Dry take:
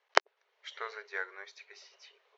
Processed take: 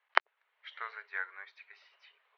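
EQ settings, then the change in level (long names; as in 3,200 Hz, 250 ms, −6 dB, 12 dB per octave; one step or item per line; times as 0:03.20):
high-pass filter 1,100 Hz 12 dB per octave
low-pass filter 3,900 Hz 12 dB per octave
high-frequency loss of the air 270 metres
+3.5 dB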